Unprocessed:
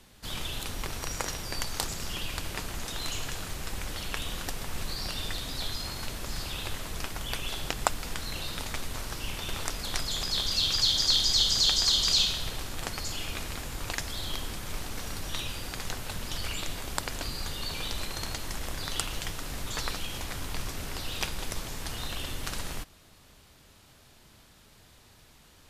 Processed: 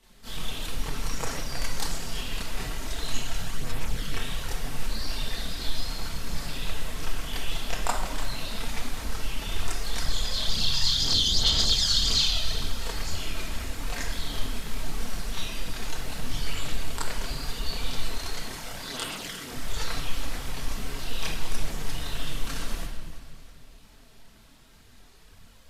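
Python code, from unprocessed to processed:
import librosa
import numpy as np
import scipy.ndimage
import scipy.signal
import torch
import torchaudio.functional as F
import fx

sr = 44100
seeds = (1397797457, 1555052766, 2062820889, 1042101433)

p1 = fx.highpass(x, sr, hz=190.0, slope=12, at=(18.11, 19.52))
p2 = p1 + fx.echo_feedback(p1, sr, ms=329, feedback_pct=42, wet_db=-14.0, dry=0)
p3 = fx.room_shoebox(p2, sr, seeds[0], volume_m3=970.0, walls='mixed', distance_m=1.6)
y = fx.chorus_voices(p3, sr, voices=4, hz=0.98, base_ms=28, depth_ms=4.2, mix_pct=65)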